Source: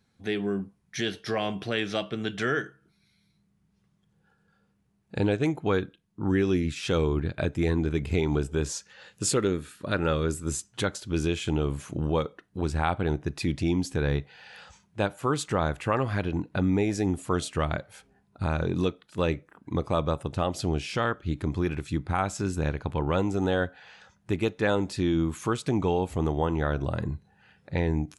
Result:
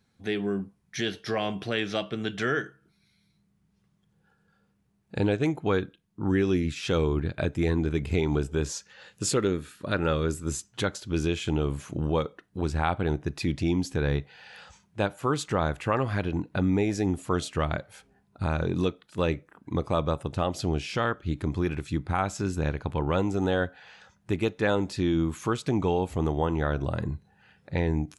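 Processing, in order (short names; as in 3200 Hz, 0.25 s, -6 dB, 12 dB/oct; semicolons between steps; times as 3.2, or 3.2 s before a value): dynamic EQ 9100 Hz, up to -5 dB, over -56 dBFS, Q 2.8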